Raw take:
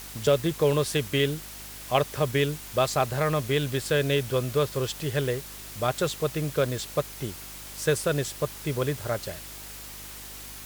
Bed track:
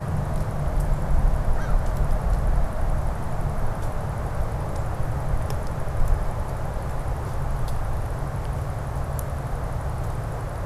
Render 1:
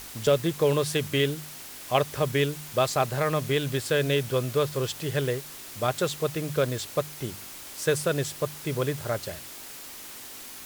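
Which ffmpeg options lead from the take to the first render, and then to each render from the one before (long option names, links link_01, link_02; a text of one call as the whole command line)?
ffmpeg -i in.wav -af "bandreject=frequency=50:width_type=h:width=4,bandreject=frequency=100:width_type=h:width=4,bandreject=frequency=150:width_type=h:width=4,bandreject=frequency=200:width_type=h:width=4" out.wav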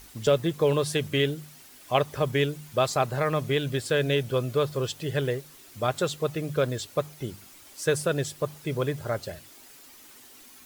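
ffmpeg -i in.wav -af "afftdn=noise_reduction=10:noise_floor=-42" out.wav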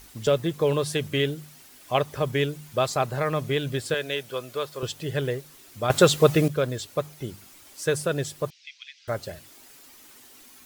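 ffmpeg -i in.wav -filter_complex "[0:a]asettb=1/sr,asplit=3[link_01][link_02][link_03];[link_01]atrim=end=3.944[link_04];[link_02]atrim=start=3.94:end=4.83,asetpts=PTS-STARTPTS,afade=type=in:duration=0.004:curve=qsin,afade=type=out:start_time=0.886:duration=0.004:curve=qsin,highpass=frequency=730:poles=1[link_05];[link_03]atrim=start=4.826[link_06];[link_04][link_05]acrossfade=duration=0.004:curve1=hsin:curve2=qsin[link_07];[link_07][link_06]acrossfade=duration=0.004:curve1=qsin:curve2=hsin,asettb=1/sr,asplit=3[link_08][link_09][link_10];[link_08]atrim=end=8.504[link_11];[link_09]atrim=start=8.5:end=9.08,asetpts=PTS-STARTPTS,afade=type=in:duration=0.004:curve=qsin,afade=type=out:start_time=0.576:duration=0.004:curve=qsin,asuperpass=centerf=3600:order=8:qfactor=0.96[link_12];[link_10]atrim=start=9.076[link_13];[link_11][link_12]acrossfade=duration=0.004:curve1=hsin:curve2=qsin[link_14];[link_14][link_13]acrossfade=duration=0.004:curve1=qsin:curve2=hsin,asplit=3[link_15][link_16][link_17];[link_15]atrim=end=5.902[link_18];[link_16]atrim=start=5.898:end=6.482,asetpts=PTS-STARTPTS,volume=10.5dB[link_19];[link_17]atrim=start=6.478[link_20];[link_18][link_19]acrossfade=duration=0.004:curve1=hsin:curve2=hsin[link_21];[link_21][link_20]acrossfade=duration=0.004:curve1=hsin:curve2=hsin" out.wav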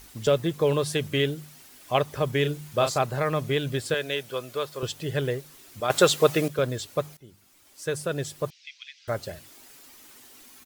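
ffmpeg -i in.wav -filter_complex "[0:a]asplit=3[link_01][link_02][link_03];[link_01]afade=type=out:start_time=2.44:duration=0.02[link_04];[link_02]asplit=2[link_05][link_06];[link_06]adelay=34,volume=-7dB[link_07];[link_05][link_07]amix=inputs=2:normalize=0,afade=type=in:start_time=2.44:duration=0.02,afade=type=out:start_time=2.98:duration=0.02[link_08];[link_03]afade=type=in:start_time=2.98:duration=0.02[link_09];[link_04][link_08][link_09]amix=inputs=3:normalize=0,asettb=1/sr,asplit=3[link_10][link_11][link_12];[link_10]atrim=end=5.804[link_13];[link_11]atrim=start=5.8:end=6.59,asetpts=PTS-STARTPTS,afade=type=in:duration=0.004:curve=qsin,afade=type=out:start_time=0.786:duration=0.004:curve=qsin,highpass=frequency=340:poles=1[link_14];[link_12]atrim=start=6.586[link_15];[link_13][link_14]acrossfade=duration=0.004:curve1=hsin:curve2=qsin[link_16];[link_16][link_15]acrossfade=duration=0.004:curve1=qsin:curve2=hsin,asplit=2[link_17][link_18];[link_17]atrim=end=7.17,asetpts=PTS-STARTPTS,afade=type=out:start_time=7.166:duration=0.004:curve=hsin:silence=0.105925[link_19];[link_18]atrim=start=7.17,asetpts=PTS-STARTPTS,afade=type=in:duration=1.38:silence=0.105925[link_20];[link_19][link_20]concat=n=2:v=0:a=1" out.wav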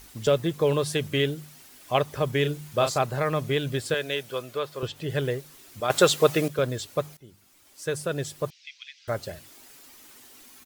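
ffmpeg -i in.wav -filter_complex "[0:a]asettb=1/sr,asplit=3[link_01][link_02][link_03];[link_01]atrim=end=4.424[link_04];[link_02]atrim=start=4.42:end=5.1,asetpts=PTS-STARTPTS,afade=type=in:duration=0.004:curve=qsin,afade=type=out:start_time=0.676:duration=0.004:curve=qsin,acrossover=split=4000[link_05][link_06];[link_06]acompressor=threshold=-49dB:ratio=4:attack=1:release=60[link_07];[link_05][link_07]amix=inputs=2:normalize=0[link_08];[link_03]atrim=start=5.096[link_09];[link_04][link_08]acrossfade=duration=0.004:curve1=hsin:curve2=qsin[link_10];[link_10][link_09]acrossfade=duration=0.004:curve1=qsin:curve2=hsin" out.wav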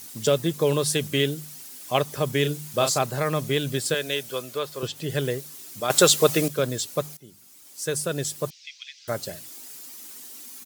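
ffmpeg -i in.wav -af "highpass=190,bass=frequency=250:gain=8,treble=frequency=4000:gain=10" out.wav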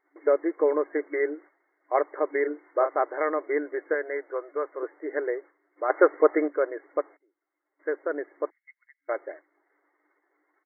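ffmpeg -i in.wav -af "agate=range=-17dB:threshold=-39dB:ratio=16:detection=peak,afftfilt=real='re*between(b*sr/4096,290,2200)':imag='im*between(b*sr/4096,290,2200)':win_size=4096:overlap=0.75" out.wav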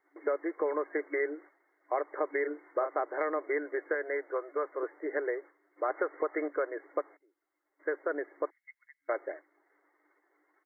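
ffmpeg -i in.wav -filter_complex "[0:a]alimiter=limit=-14dB:level=0:latency=1:release=280,acrossover=split=350|820[link_01][link_02][link_03];[link_01]acompressor=threshold=-42dB:ratio=4[link_04];[link_02]acompressor=threshold=-33dB:ratio=4[link_05];[link_03]acompressor=threshold=-33dB:ratio=4[link_06];[link_04][link_05][link_06]amix=inputs=3:normalize=0" out.wav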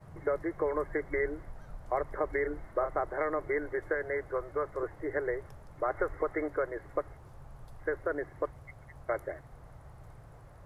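ffmpeg -i in.wav -i bed.wav -filter_complex "[1:a]volume=-23.5dB[link_01];[0:a][link_01]amix=inputs=2:normalize=0" out.wav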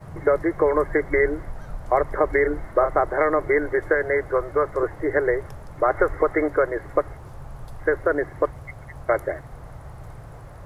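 ffmpeg -i in.wav -af "volume=11.5dB" out.wav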